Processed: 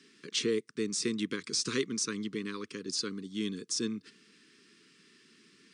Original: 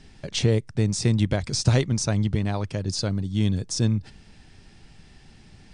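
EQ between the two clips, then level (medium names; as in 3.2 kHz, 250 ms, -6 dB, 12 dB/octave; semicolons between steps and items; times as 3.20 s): high-pass 240 Hz 24 dB/octave; elliptic band-stop 450–1100 Hz, stop band 50 dB; -3.5 dB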